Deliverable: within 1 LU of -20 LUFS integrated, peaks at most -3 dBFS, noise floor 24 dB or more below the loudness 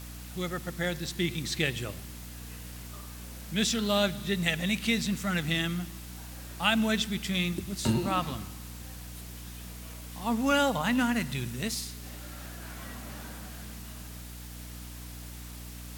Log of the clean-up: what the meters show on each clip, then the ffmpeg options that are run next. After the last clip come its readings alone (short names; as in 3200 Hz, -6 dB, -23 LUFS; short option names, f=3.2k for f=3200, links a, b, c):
hum 60 Hz; harmonics up to 300 Hz; hum level -42 dBFS; noise floor -43 dBFS; noise floor target -54 dBFS; loudness -29.5 LUFS; peak -11.5 dBFS; loudness target -20.0 LUFS
-> -af "bandreject=f=60:t=h:w=6,bandreject=f=120:t=h:w=6,bandreject=f=180:t=h:w=6,bandreject=f=240:t=h:w=6,bandreject=f=300:t=h:w=6"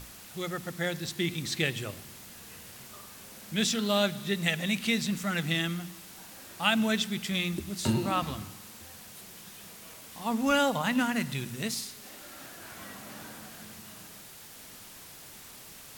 hum none; noise floor -49 dBFS; noise floor target -54 dBFS
-> -af "afftdn=nr=6:nf=-49"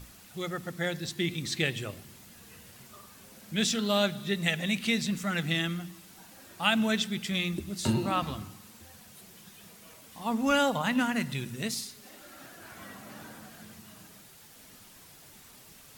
noise floor -53 dBFS; noise floor target -54 dBFS
-> -af "afftdn=nr=6:nf=-53"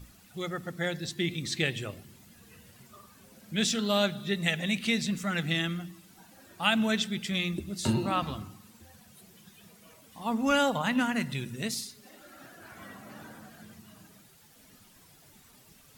noise floor -58 dBFS; loudness -30.0 LUFS; peak -11.5 dBFS; loudness target -20.0 LUFS
-> -af "volume=10dB,alimiter=limit=-3dB:level=0:latency=1"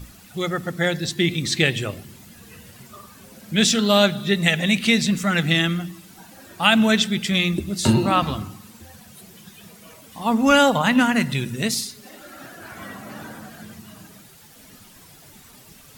loudness -20.0 LUFS; peak -3.0 dBFS; noise floor -48 dBFS